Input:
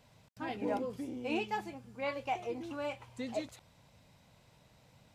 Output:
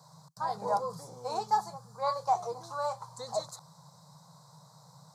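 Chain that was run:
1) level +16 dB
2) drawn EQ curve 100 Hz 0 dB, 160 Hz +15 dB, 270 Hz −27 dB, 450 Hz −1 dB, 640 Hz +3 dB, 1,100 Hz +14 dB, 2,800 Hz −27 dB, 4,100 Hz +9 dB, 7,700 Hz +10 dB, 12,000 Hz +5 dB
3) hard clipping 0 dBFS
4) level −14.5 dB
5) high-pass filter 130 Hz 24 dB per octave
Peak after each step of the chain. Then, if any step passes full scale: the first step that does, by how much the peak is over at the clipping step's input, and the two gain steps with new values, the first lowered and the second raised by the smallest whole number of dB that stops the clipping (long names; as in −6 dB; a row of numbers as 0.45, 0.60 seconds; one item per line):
−6.5, −2.0, −2.0, −16.5, −16.5 dBFS
no step passes full scale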